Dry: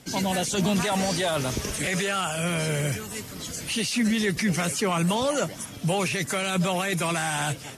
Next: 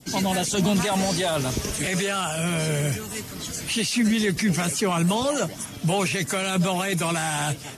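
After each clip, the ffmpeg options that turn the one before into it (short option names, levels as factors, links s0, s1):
-af "adynamicequalizer=threshold=0.0112:dfrequency=1700:dqfactor=0.79:tfrequency=1700:tqfactor=0.79:attack=5:release=100:ratio=0.375:range=1.5:mode=cutabove:tftype=bell,bandreject=f=520:w=12,volume=1.33"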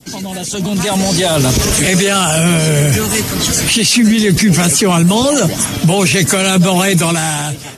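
-filter_complex "[0:a]acrossover=split=490|3000[s0][s1][s2];[s1]acompressor=threshold=0.02:ratio=2.5[s3];[s0][s3][s2]amix=inputs=3:normalize=0,alimiter=limit=0.0794:level=0:latency=1:release=24,dynaudnorm=f=240:g=7:m=4.22,volume=2"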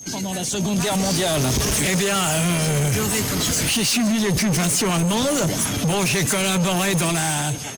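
-af "asoftclip=type=tanh:threshold=0.178,aeval=exprs='val(0)+0.0224*sin(2*PI*6400*n/s)':c=same,aecho=1:1:162:0.119,volume=0.75"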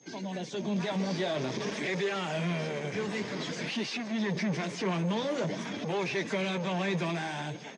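-af "flanger=delay=2.3:depth=8.9:regen=-43:speed=0.5:shape=sinusoidal,highpass=f=180:w=0.5412,highpass=f=180:w=1.3066,equalizer=f=270:t=q:w=4:g=-6,equalizer=f=760:t=q:w=4:g=-4,equalizer=f=1300:t=q:w=4:g=-8,equalizer=f=2900:t=q:w=4:g=-8,equalizer=f=4200:t=q:w=4:g=-6,lowpass=f=4200:w=0.5412,lowpass=f=4200:w=1.3066,volume=0.708"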